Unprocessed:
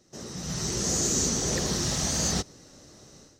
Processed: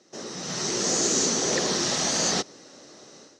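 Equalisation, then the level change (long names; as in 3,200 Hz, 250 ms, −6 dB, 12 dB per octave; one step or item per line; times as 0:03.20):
band-pass filter 290–5,900 Hz
+6.0 dB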